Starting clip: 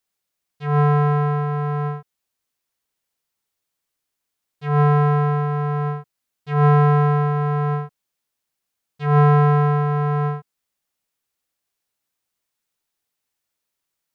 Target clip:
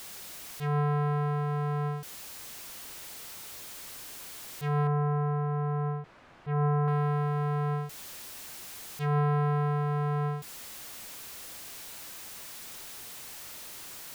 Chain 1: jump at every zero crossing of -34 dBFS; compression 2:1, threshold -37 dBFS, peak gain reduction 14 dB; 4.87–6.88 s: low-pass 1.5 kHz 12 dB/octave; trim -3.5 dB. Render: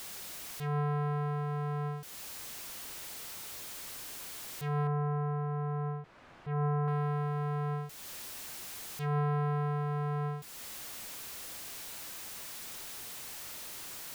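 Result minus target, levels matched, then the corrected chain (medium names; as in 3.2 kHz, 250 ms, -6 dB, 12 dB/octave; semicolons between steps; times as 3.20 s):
compression: peak gain reduction +4 dB
jump at every zero crossing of -34 dBFS; compression 2:1, threshold -28.5 dBFS, peak gain reduction 9.5 dB; 4.87–6.88 s: low-pass 1.5 kHz 12 dB/octave; trim -3.5 dB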